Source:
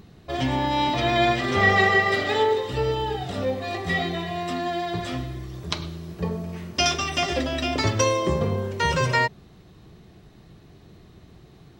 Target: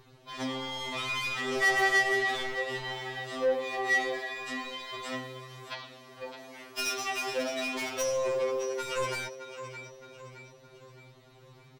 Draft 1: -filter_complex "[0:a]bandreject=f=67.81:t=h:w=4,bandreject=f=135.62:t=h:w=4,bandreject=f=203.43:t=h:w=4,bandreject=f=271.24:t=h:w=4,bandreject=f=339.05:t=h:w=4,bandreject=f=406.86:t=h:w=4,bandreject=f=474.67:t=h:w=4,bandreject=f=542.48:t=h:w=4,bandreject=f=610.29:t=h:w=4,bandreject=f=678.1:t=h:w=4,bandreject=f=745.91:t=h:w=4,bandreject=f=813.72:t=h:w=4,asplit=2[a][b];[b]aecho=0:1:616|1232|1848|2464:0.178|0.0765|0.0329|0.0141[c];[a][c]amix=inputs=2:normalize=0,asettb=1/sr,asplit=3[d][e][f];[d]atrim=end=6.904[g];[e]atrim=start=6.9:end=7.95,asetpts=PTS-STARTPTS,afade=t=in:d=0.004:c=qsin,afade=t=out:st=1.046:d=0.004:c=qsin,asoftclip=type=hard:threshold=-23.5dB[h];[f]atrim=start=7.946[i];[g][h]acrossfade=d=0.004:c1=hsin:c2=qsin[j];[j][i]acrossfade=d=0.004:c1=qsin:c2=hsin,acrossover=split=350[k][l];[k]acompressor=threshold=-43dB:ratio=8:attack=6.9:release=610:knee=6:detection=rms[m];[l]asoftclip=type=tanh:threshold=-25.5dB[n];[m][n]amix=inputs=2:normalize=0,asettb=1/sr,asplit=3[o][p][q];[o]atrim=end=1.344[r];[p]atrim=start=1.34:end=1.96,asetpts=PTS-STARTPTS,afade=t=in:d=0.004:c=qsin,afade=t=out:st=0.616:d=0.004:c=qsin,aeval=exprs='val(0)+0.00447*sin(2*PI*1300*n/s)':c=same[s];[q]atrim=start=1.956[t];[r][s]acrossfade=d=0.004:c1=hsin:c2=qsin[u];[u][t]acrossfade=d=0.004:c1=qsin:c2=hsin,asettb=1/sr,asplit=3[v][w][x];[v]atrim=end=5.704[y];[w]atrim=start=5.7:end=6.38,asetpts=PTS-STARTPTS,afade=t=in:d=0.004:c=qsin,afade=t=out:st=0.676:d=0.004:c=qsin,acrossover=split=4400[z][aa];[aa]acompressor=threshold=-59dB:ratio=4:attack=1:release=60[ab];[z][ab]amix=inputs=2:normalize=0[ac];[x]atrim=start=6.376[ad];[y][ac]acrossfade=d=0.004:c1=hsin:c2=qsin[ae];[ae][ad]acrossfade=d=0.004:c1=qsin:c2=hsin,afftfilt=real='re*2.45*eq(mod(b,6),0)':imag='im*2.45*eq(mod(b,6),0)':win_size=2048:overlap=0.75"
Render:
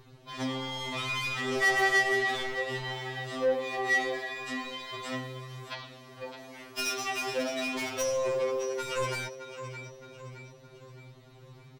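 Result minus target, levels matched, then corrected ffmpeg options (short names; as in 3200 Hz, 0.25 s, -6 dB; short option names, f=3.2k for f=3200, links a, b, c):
compressor: peak gain reduction -7 dB
-filter_complex "[0:a]bandreject=f=67.81:t=h:w=4,bandreject=f=135.62:t=h:w=4,bandreject=f=203.43:t=h:w=4,bandreject=f=271.24:t=h:w=4,bandreject=f=339.05:t=h:w=4,bandreject=f=406.86:t=h:w=4,bandreject=f=474.67:t=h:w=4,bandreject=f=542.48:t=h:w=4,bandreject=f=610.29:t=h:w=4,bandreject=f=678.1:t=h:w=4,bandreject=f=745.91:t=h:w=4,bandreject=f=813.72:t=h:w=4,asplit=2[a][b];[b]aecho=0:1:616|1232|1848|2464:0.178|0.0765|0.0329|0.0141[c];[a][c]amix=inputs=2:normalize=0,asettb=1/sr,asplit=3[d][e][f];[d]atrim=end=6.904[g];[e]atrim=start=6.9:end=7.95,asetpts=PTS-STARTPTS,afade=t=in:d=0.004:c=qsin,afade=t=out:st=1.046:d=0.004:c=qsin,asoftclip=type=hard:threshold=-23.5dB[h];[f]atrim=start=7.946[i];[g][h]acrossfade=d=0.004:c1=hsin:c2=qsin[j];[j][i]acrossfade=d=0.004:c1=qsin:c2=hsin,acrossover=split=350[k][l];[k]acompressor=threshold=-51dB:ratio=8:attack=6.9:release=610:knee=6:detection=rms[m];[l]asoftclip=type=tanh:threshold=-25.5dB[n];[m][n]amix=inputs=2:normalize=0,asettb=1/sr,asplit=3[o][p][q];[o]atrim=end=1.344[r];[p]atrim=start=1.34:end=1.96,asetpts=PTS-STARTPTS,afade=t=in:d=0.004:c=qsin,afade=t=out:st=0.616:d=0.004:c=qsin,aeval=exprs='val(0)+0.00447*sin(2*PI*1300*n/s)':c=same[s];[q]atrim=start=1.956[t];[r][s]acrossfade=d=0.004:c1=hsin:c2=qsin[u];[u][t]acrossfade=d=0.004:c1=qsin:c2=hsin,asettb=1/sr,asplit=3[v][w][x];[v]atrim=end=5.704[y];[w]atrim=start=5.7:end=6.38,asetpts=PTS-STARTPTS,afade=t=in:d=0.004:c=qsin,afade=t=out:st=0.676:d=0.004:c=qsin,acrossover=split=4400[z][aa];[aa]acompressor=threshold=-59dB:ratio=4:attack=1:release=60[ab];[z][ab]amix=inputs=2:normalize=0[ac];[x]atrim=start=6.376[ad];[y][ac]acrossfade=d=0.004:c1=hsin:c2=qsin[ae];[ae][ad]acrossfade=d=0.004:c1=qsin:c2=hsin,afftfilt=real='re*2.45*eq(mod(b,6),0)':imag='im*2.45*eq(mod(b,6),0)':win_size=2048:overlap=0.75"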